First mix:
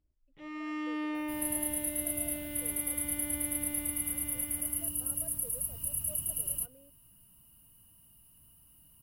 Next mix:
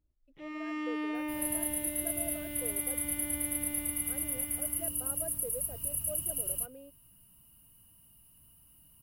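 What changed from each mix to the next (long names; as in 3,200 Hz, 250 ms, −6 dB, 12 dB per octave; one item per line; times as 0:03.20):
speech +9.5 dB
master: add parametric band 2,300 Hz +2 dB 0.29 octaves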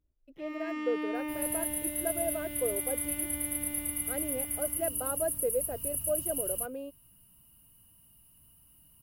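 speech +11.0 dB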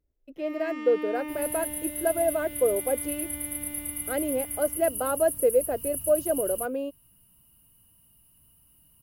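speech +9.0 dB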